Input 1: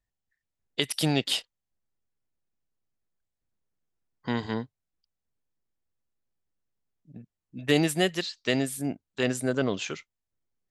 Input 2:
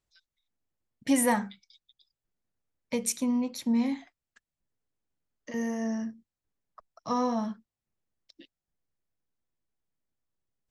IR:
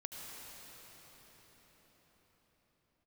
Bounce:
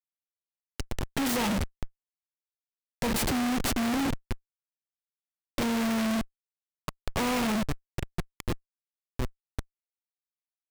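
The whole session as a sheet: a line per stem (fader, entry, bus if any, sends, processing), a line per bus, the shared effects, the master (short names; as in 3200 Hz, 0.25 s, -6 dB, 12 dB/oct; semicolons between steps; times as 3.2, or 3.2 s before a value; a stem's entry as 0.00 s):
-11.5 dB, 0.00 s, no send, compressor 5:1, threshold -27 dBFS, peak gain reduction 9.5 dB
-3.5 dB, 0.10 s, send -22.5 dB, AGC gain up to 11 dB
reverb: on, pre-delay 69 ms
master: Schmitt trigger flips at -34 dBFS; noise-modulated delay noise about 1300 Hz, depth 0.12 ms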